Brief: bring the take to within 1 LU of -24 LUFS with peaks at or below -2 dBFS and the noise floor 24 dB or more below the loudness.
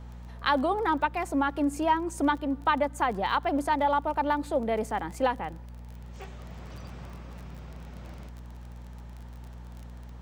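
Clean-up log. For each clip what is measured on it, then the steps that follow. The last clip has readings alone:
ticks 24/s; hum 60 Hz; harmonics up to 240 Hz; hum level -41 dBFS; loudness -27.5 LUFS; peak -11.5 dBFS; loudness target -24.0 LUFS
-> de-click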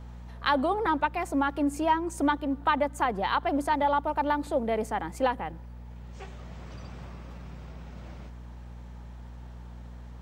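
ticks 0/s; hum 60 Hz; harmonics up to 240 Hz; hum level -41 dBFS
-> de-hum 60 Hz, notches 4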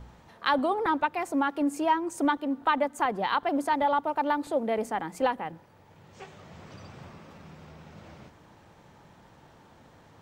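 hum none; loudness -28.0 LUFS; peak -11.5 dBFS; loudness target -24.0 LUFS
-> gain +4 dB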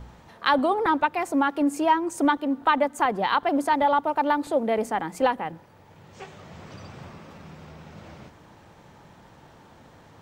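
loudness -24.0 LUFS; peak -7.5 dBFS; noise floor -52 dBFS

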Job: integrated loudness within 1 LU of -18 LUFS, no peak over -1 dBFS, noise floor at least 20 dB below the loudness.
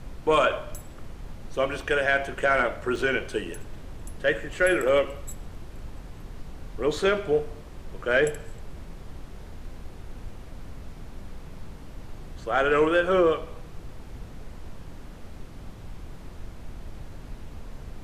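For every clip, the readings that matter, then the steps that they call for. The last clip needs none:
dropouts 1; longest dropout 1.2 ms; noise floor -43 dBFS; noise floor target -45 dBFS; loudness -25.0 LUFS; peak -10.5 dBFS; loudness target -18.0 LUFS
-> interpolate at 2.96, 1.2 ms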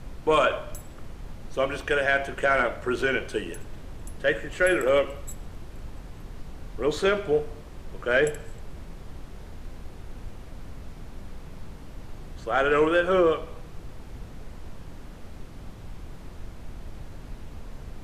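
dropouts 0; noise floor -43 dBFS; noise floor target -45 dBFS
-> noise print and reduce 6 dB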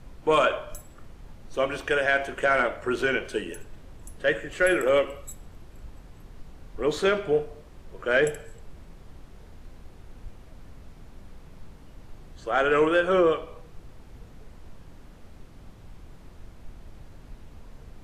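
noise floor -49 dBFS; loudness -24.5 LUFS; peak -11.0 dBFS; loudness target -18.0 LUFS
-> gain +6.5 dB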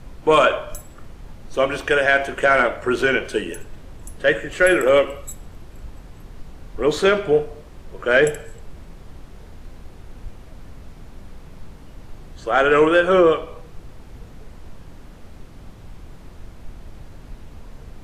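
loudness -18.0 LUFS; peak -4.5 dBFS; noise floor -42 dBFS

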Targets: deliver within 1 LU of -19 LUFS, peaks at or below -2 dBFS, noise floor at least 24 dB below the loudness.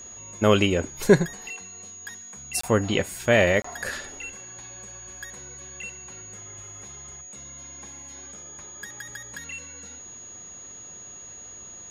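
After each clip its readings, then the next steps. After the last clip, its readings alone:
dropouts 2; longest dropout 24 ms; steady tone 6700 Hz; tone level -40 dBFS; loudness -25.5 LUFS; peak -4.0 dBFS; loudness target -19.0 LUFS
-> interpolate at 2.61/3.62, 24 ms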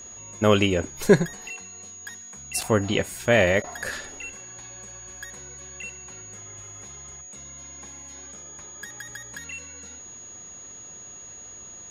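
dropouts 0; steady tone 6700 Hz; tone level -40 dBFS
-> notch 6700 Hz, Q 30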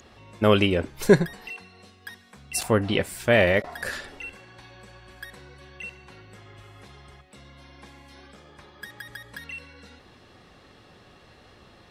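steady tone none; loudness -23.5 LUFS; peak -4.0 dBFS; loudness target -19.0 LUFS
-> gain +4.5 dB; limiter -2 dBFS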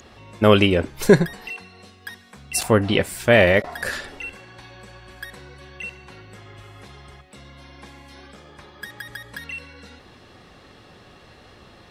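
loudness -19.5 LUFS; peak -2.0 dBFS; noise floor -49 dBFS

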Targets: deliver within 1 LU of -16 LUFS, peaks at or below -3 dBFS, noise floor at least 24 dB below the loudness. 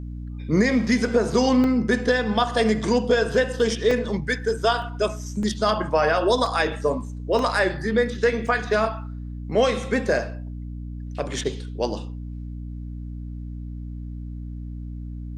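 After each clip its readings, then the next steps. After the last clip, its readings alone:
dropouts 7; longest dropout 2.0 ms; hum 60 Hz; harmonics up to 300 Hz; hum level -31 dBFS; loudness -22.5 LUFS; peak -7.5 dBFS; loudness target -16.0 LUFS
-> interpolate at 1.64/3.91/4.82/5.43/6.46/7.39/8.47, 2 ms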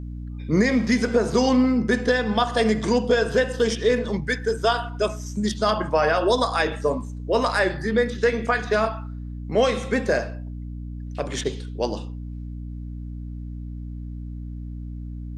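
dropouts 0; hum 60 Hz; harmonics up to 300 Hz; hum level -30 dBFS
-> de-hum 60 Hz, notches 5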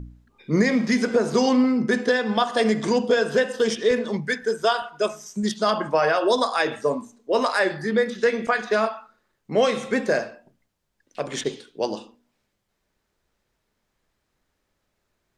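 hum none; loudness -23.0 LUFS; peak -8.0 dBFS; loudness target -16.0 LUFS
-> gain +7 dB; limiter -3 dBFS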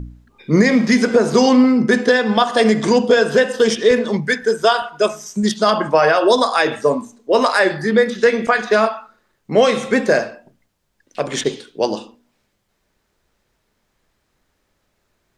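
loudness -16.0 LUFS; peak -3.0 dBFS; noise floor -69 dBFS

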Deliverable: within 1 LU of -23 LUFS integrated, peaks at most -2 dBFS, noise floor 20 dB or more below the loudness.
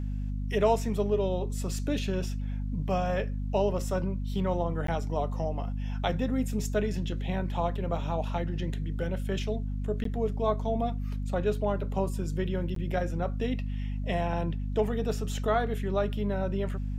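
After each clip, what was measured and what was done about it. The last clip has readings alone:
dropouts 3; longest dropout 13 ms; hum 50 Hz; harmonics up to 250 Hz; hum level -29 dBFS; loudness -30.5 LUFS; peak -12.5 dBFS; loudness target -23.0 LUFS
-> interpolate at 4.87/10.04/12.75, 13 ms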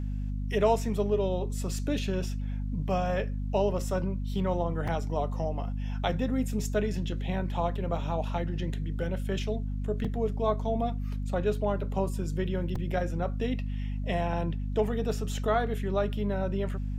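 dropouts 0; hum 50 Hz; harmonics up to 250 Hz; hum level -29 dBFS
-> notches 50/100/150/200/250 Hz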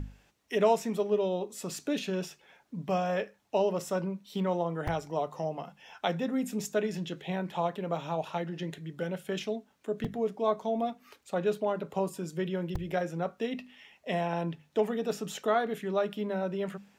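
hum none; loudness -32.5 LUFS; peak -13.5 dBFS; loudness target -23.0 LUFS
-> gain +9.5 dB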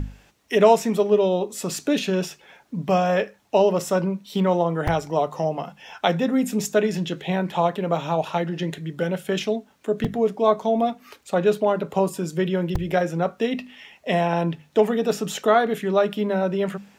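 loudness -23.0 LUFS; peak -4.0 dBFS; noise floor -57 dBFS

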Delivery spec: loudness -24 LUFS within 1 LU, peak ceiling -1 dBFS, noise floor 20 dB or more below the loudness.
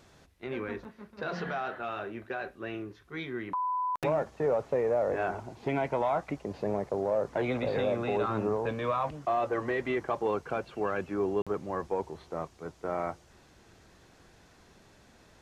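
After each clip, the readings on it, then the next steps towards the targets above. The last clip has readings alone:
dropouts 1; longest dropout 46 ms; loudness -32.5 LUFS; peak -17.0 dBFS; loudness target -24.0 LUFS
-> interpolate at 11.42, 46 ms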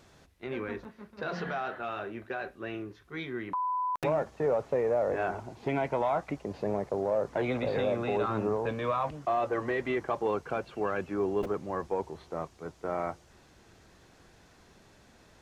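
dropouts 0; loudness -32.5 LUFS; peak -17.0 dBFS; loudness target -24.0 LUFS
-> gain +8.5 dB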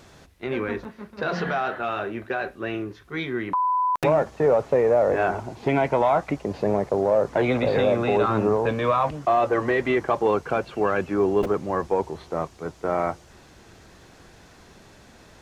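loudness -24.0 LUFS; peak -8.5 dBFS; noise floor -51 dBFS

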